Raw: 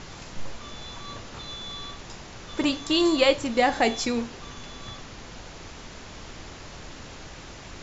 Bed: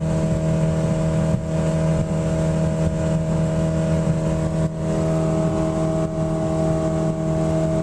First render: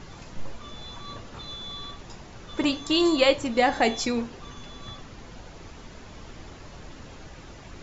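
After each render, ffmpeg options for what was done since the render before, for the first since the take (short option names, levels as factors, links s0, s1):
-af "afftdn=nr=7:nf=-43"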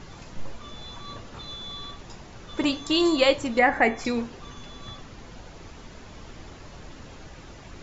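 -filter_complex "[0:a]asettb=1/sr,asplit=3[s0][s1][s2];[s0]atrim=end=3.594[s3];[s1]atrim=start=3.59:end=4.05,asetpts=PTS-STARTPTS,afade=t=in:d=0.004:c=qsin,afade=t=out:st=0.456:d=0.004:c=qsin,highshelf=f=2700:t=q:w=3:g=-9[s4];[s2]atrim=start=4.046[s5];[s3][s4]acrossfade=d=0.004:c1=hsin:c2=qsin[s6];[s6][s5]acrossfade=d=0.004:c1=qsin:c2=hsin"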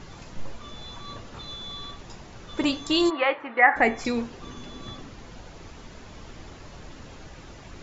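-filter_complex "[0:a]asplit=3[s0][s1][s2];[s0]afade=t=out:st=3.09:d=0.02[s3];[s1]highpass=480,equalizer=f=570:t=q:w=4:g=-5,equalizer=f=820:t=q:w=4:g=5,equalizer=f=1300:t=q:w=4:g=5,equalizer=f=1900:t=q:w=4:g=6,lowpass=f=2400:w=0.5412,lowpass=f=2400:w=1.3066,afade=t=in:st=3.09:d=0.02,afade=t=out:st=3.75:d=0.02[s4];[s2]afade=t=in:st=3.75:d=0.02[s5];[s3][s4][s5]amix=inputs=3:normalize=0,asettb=1/sr,asplit=3[s6][s7][s8];[s6]atrim=end=4.414[s9];[s7]atrim=start=4.41:end=5.1,asetpts=PTS-STARTPTS,afade=t=in:d=0.004:c=qsin,afade=t=out:st=0.686:d=0.004:c=qsin,equalizer=f=290:w=1.2:g=6.5[s10];[s8]atrim=start=5.096[s11];[s9][s10]acrossfade=d=0.004:c1=hsin:c2=qsin[s12];[s12][s11]acrossfade=d=0.004:c1=qsin:c2=hsin"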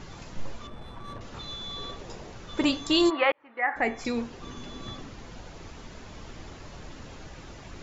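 -filter_complex "[0:a]asettb=1/sr,asplit=3[s0][s1][s2];[s0]atrim=end=0.674[s3];[s1]atrim=start=0.67:end=1.21,asetpts=PTS-STARTPTS,afade=t=in:d=0.004:c=qsin,afade=t=out:st=0.536:d=0.004:c=qsin,adynamicsmooth=sensitivity=7:basefreq=1100[s4];[s2]atrim=start=1.206[s5];[s3][s4]acrossfade=d=0.004:c1=hsin:c2=qsin[s6];[s6][s5]acrossfade=d=0.004:c1=qsin:c2=hsin,asettb=1/sr,asplit=3[s7][s8][s9];[s7]atrim=end=1.764[s10];[s8]atrim=start=1.76:end=2.33,asetpts=PTS-STARTPTS,afade=t=in:d=0.004:c=qsin,afade=t=out:st=0.566:d=0.004:c=qsin,equalizer=f=480:w=1.7:g=8.5[s11];[s9]atrim=start=2.326[s12];[s10][s11]acrossfade=d=0.004:c1=hsin:c2=qsin[s13];[s13][s12]acrossfade=d=0.004:c1=qsin:c2=hsin,asplit=2[s14][s15];[s14]atrim=end=3.32,asetpts=PTS-STARTPTS,afade=t=out:st=3.316:d=0.004:c=hsin[s16];[s15]atrim=start=3.32,asetpts=PTS-STARTPTS,afade=t=in:d=1.55:c=qsin[s17];[s16][s17]concat=n=2:v=0:a=1"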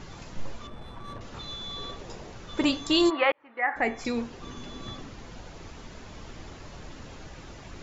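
-af anull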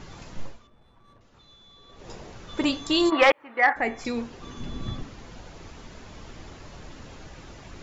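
-filter_complex "[0:a]asettb=1/sr,asplit=3[s0][s1][s2];[s0]atrim=end=3.124[s3];[s1]atrim=start=3.12:end=3.73,asetpts=PTS-STARTPTS,afade=t=in:d=0.004:c=qsin,afade=t=out:st=0.606:d=0.004:c=qsin,aeval=exprs='0.355*sin(PI/2*1.58*val(0)/0.355)':c=same[s4];[s2]atrim=start=3.726[s5];[s3][s4]acrossfade=d=0.004:c1=hsin:c2=qsin[s6];[s6][s5]acrossfade=d=0.004:c1=qsin:c2=hsin,asettb=1/sr,asplit=3[s7][s8][s9];[s7]atrim=end=4.604[s10];[s8]atrim=start=4.6:end=5.03,asetpts=PTS-STARTPTS,afade=t=in:d=0.004:c=qsin,afade=t=out:st=0.426:d=0.004:c=qsin,bass=f=250:g=10,treble=f=4000:g=-2[s11];[s9]atrim=start=5.026[s12];[s10][s11]acrossfade=d=0.004:c1=hsin:c2=qsin[s13];[s13][s12]acrossfade=d=0.004:c1=qsin:c2=hsin,asplit=3[s14][s15][s16];[s14]atrim=end=0.69,asetpts=PTS-STARTPTS,afade=t=out:st=0.43:d=0.26:c=qua:silence=0.158489[s17];[s15]atrim=start=0.69:end=1.83,asetpts=PTS-STARTPTS,volume=0.158[s18];[s16]atrim=start=1.83,asetpts=PTS-STARTPTS,afade=t=in:d=0.26:c=qua:silence=0.158489[s19];[s17][s18][s19]concat=n=3:v=0:a=1"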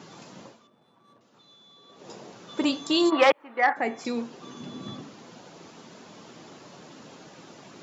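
-af "highpass=f=160:w=0.5412,highpass=f=160:w=1.3066,equalizer=f=2000:t=o:w=0.9:g=-4.5"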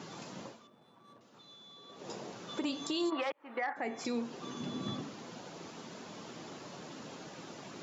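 -af "acompressor=threshold=0.0447:ratio=6,alimiter=level_in=1.19:limit=0.0631:level=0:latency=1:release=186,volume=0.841"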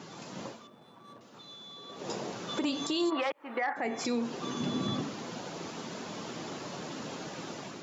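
-af "dynaudnorm=f=150:g=5:m=2.24,alimiter=limit=0.075:level=0:latency=1:release=70"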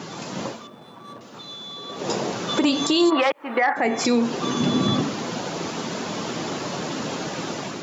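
-af "volume=3.76"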